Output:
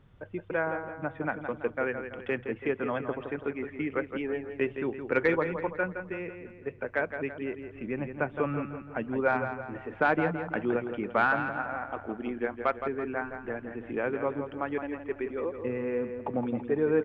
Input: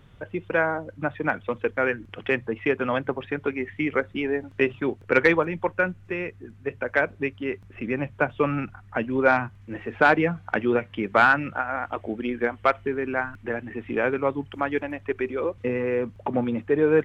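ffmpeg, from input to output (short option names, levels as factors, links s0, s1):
-filter_complex "[0:a]highshelf=f=3200:g=-11.5,asplit=2[s0][s1];[s1]adelay=166,lowpass=f=4200:p=1,volume=0.398,asplit=2[s2][s3];[s3]adelay=166,lowpass=f=4200:p=1,volume=0.48,asplit=2[s4][s5];[s5]adelay=166,lowpass=f=4200:p=1,volume=0.48,asplit=2[s6][s7];[s7]adelay=166,lowpass=f=4200:p=1,volume=0.48,asplit=2[s8][s9];[s9]adelay=166,lowpass=f=4200:p=1,volume=0.48,asplit=2[s10][s11];[s11]adelay=166,lowpass=f=4200:p=1,volume=0.48[s12];[s2][s4][s6][s8][s10][s12]amix=inputs=6:normalize=0[s13];[s0][s13]amix=inputs=2:normalize=0,volume=0.501"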